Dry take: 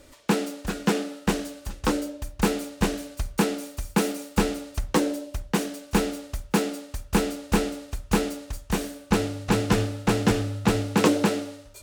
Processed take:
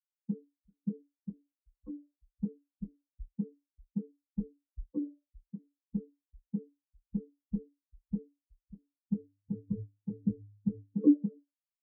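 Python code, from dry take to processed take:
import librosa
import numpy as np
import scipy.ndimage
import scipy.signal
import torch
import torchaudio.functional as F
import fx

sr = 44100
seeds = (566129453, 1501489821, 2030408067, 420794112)

y = fx.spectral_expand(x, sr, expansion=4.0)
y = F.gain(torch.from_numpy(y), -7.0).numpy()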